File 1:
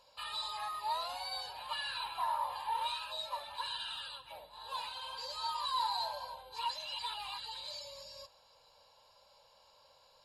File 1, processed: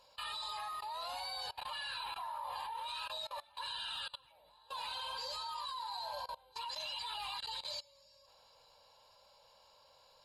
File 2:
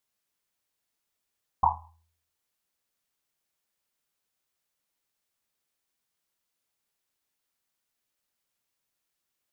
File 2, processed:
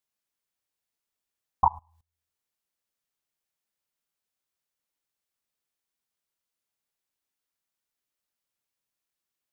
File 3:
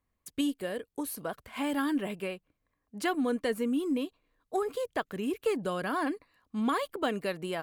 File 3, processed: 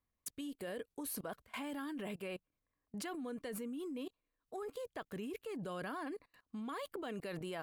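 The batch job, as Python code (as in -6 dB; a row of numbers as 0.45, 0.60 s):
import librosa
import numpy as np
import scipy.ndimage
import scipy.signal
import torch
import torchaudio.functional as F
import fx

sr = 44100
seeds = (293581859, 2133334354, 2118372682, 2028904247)

y = fx.level_steps(x, sr, step_db=23)
y = y * librosa.db_to_amplitude(4.0)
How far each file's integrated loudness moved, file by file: -2.5, +2.0, -11.5 LU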